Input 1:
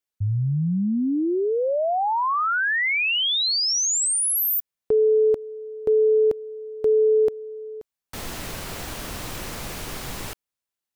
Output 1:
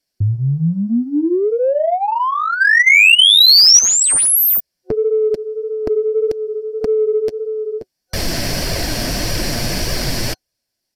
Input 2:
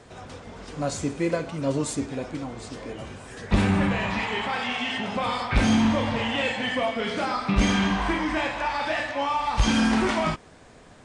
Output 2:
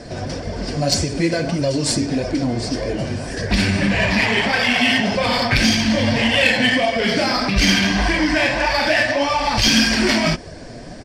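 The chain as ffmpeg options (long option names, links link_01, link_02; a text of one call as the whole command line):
ffmpeg -i in.wav -filter_complex "[0:a]superequalizer=7b=0.631:9b=0.447:10b=0.355:14b=3.16,acrossover=split=2100[link_01][link_02];[link_01]acompressor=threshold=-32dB:ratio=6:attack=3.3:release=142:knee=6:detection=peak[link_03];[link_03][link_02]amix=inputs=2:normalize=0,flanger=delay=1.7:depth=6.9:regen=-19:speed=1.7:shape=sinusoidal,asplit=2[link_04][link_05];[link_05]adynamicsmooth=sensitivity=3.5:basefreq=1600,volume=1.5dB[link_06];[link_04][link_06]amix=inputs=2:normalize=0,aresample=32000,aresample=44100,alimiter=level_in=14.5dB:limit=-1dB:release=50:level=0:latency=1,volume=-1dB" out.wav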